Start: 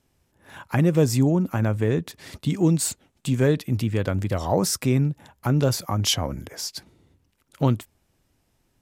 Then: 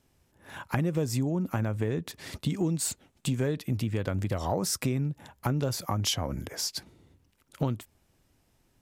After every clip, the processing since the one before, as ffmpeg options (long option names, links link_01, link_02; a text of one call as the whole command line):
ffmpeg -i in.wav -af "acompressor=threshold=-25dB:ratio=6" out.wav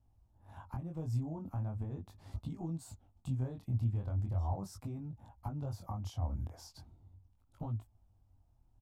ffmpeg -i in.wav -af "alimiter=limit=-20.5dB:level=0:latency=1:release=281,flanger=delay=18:depth=7.4:speed=0.39,firequalizer=gain_entry='entry(100,0);entry(150,-15);entry(220,-13);entry(440,-22);entry(760,-9);entry(1800,-29);entry(3300,-26)':delay=0.05:min_phase=1,volume=7dB" out.wav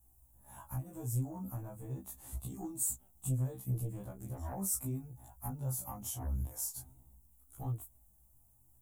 ffmpeg -i in.wav -af "aeval=exprs='0.0668*sin(PI/2*1.78*val(0)/0.0668)':channel_layout=same,aexciter=amount=10.3:drive=8.4:freq=7100,afftfilt=real='re*1.73*eq(mod(b,3),0)':imag='im*1.73*eq(mod(b,3),0)':win_size=2048:overlap=0.75,volume=-6dB" out.wav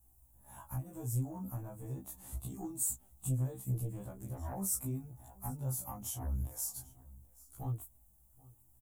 ffmpeg -i in.wav -af "aecho=1:1:779:0.075" out.wav